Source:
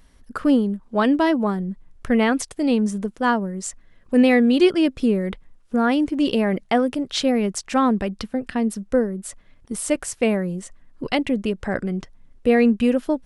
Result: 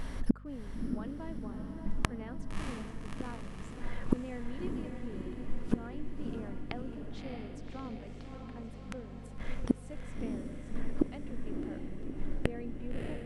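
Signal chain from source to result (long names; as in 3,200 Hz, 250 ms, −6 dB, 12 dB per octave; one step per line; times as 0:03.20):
high-shelf EQ 3,200 Hz −11.5 dB
mains-hum notches 50/100/150/200 Hz
in parallel at −3 dB: downward compressor, threshold −28 dBFS, peak gain reduction 15.5 dB
on the sum: gate with flip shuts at −25 dBFS, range −40 dB
mains hum 50 Hz, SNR 13 dB
on a send: feedback delay with all-pass diffusion 621 ms, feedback 65%, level −5 dB
on the sum: level +12 dB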